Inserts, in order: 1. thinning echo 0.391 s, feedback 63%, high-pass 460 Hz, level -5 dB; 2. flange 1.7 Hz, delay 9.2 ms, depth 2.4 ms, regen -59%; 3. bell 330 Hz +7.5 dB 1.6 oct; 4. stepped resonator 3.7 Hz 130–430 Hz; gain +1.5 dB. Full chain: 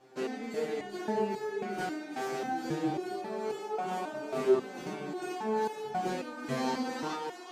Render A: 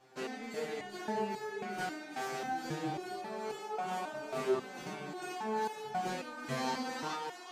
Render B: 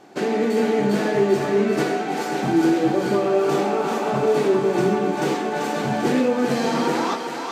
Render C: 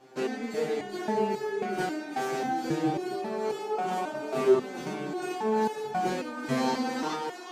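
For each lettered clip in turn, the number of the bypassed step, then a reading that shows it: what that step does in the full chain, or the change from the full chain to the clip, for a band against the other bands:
3, 250 Hz band -5.0 dB; 4, crest factor change -6.0 dB; 2, loudness change +4.0 LU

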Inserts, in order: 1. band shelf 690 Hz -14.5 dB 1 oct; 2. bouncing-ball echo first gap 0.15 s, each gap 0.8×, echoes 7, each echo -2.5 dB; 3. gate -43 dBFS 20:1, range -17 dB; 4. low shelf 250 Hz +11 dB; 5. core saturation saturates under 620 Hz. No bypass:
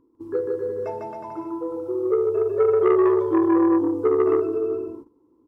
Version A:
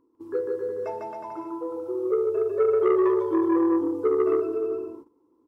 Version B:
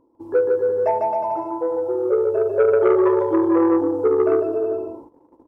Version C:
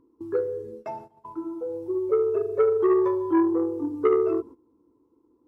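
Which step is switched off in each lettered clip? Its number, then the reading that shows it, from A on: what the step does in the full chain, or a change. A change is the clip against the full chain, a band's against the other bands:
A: 4, loudness change -3.5 LU; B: 1, 125 Hz band -3.5 dB; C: 2, crest factor change +1.5 dB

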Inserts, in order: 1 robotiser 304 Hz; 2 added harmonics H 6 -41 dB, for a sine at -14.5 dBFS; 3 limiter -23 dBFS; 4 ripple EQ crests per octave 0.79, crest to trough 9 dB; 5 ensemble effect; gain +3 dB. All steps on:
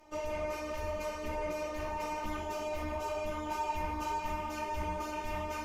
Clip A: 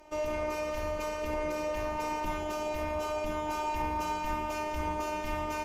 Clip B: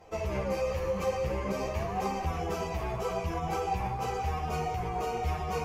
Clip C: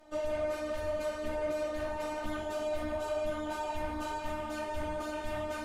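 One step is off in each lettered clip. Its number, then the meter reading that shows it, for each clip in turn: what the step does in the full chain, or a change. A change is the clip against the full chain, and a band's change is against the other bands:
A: 5, 125 Hz band -1.5 dB; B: 1, 125 Hz band +7.5 dB; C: 4, 500 Hz band +4.0 dB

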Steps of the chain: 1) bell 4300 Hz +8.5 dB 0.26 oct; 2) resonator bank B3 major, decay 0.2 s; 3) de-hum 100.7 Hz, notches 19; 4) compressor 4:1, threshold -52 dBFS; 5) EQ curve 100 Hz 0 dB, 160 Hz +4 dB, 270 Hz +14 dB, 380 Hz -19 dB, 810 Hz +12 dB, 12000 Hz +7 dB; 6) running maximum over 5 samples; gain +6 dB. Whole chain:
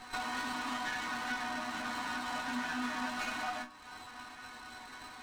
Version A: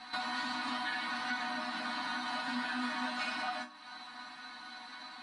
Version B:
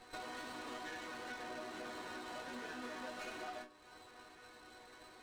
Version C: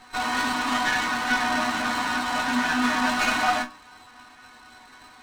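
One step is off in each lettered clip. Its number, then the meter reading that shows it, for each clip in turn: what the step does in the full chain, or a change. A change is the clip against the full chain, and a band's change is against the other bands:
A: 6, distortion -9 dB; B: 5, 500 Hz band +9.5 dB; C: 4, mean gain reduction 9.0 dB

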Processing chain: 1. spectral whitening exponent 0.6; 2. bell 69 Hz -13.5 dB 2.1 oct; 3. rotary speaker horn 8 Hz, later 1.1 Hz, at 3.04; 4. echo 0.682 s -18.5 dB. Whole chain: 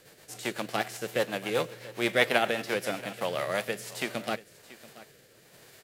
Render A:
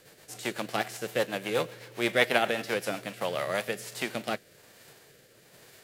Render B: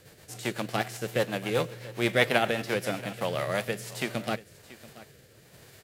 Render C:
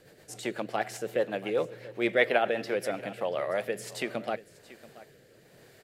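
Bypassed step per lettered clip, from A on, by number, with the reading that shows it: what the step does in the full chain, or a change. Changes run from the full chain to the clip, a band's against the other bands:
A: 4, momentary loudness spread change -4 LU; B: 2, 125 Hz band +7.5 dB; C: 1, 4 kHz band -5.0 dB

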